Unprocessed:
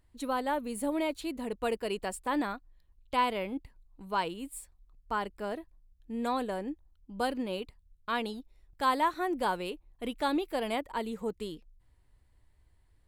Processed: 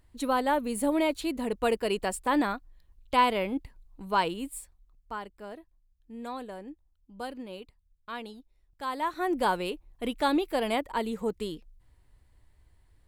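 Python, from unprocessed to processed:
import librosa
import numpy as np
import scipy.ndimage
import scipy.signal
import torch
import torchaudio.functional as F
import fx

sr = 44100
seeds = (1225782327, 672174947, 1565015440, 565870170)

y = fx.gain(x, sr, db=fx.line((4.4, 5.0), (5.28, -6.5), (8.89, -6.5), (9.31, 4.0)))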